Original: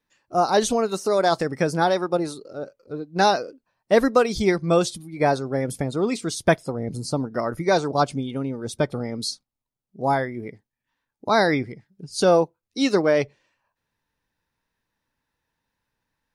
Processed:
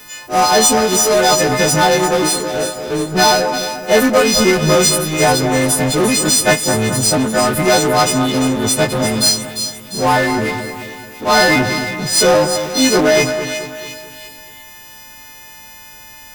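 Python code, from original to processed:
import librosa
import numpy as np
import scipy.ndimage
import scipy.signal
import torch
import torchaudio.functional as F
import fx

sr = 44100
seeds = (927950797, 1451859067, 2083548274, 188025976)

y = fx.freq_snap(x, sr, grid_st=3)
y = fx.power_curve(y, sr, exponent=0.5)
y = fx.echo_split(y, sr, split_hz=2000.0, low_ms=217, high_ms=348, feedback_pct=52, wet_db=-8.5)
y = y * 10.0 ** (-1.0 / 20.0)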